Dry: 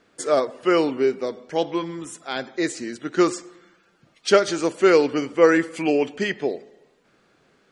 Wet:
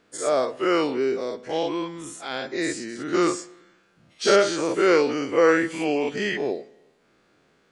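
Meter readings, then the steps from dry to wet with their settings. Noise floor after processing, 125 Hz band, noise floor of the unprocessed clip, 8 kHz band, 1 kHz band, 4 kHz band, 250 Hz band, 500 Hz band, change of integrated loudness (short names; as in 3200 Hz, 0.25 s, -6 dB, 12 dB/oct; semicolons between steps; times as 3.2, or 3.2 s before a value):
-63 dBFS, -2.5 dB, -62 dBFS, +1.0 dB, -0.5 dB, +0.5 dB, -2.0 dB, -2.0 dB, -1.5 dB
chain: spectral dilation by 0.12 s; gain -6.5 dB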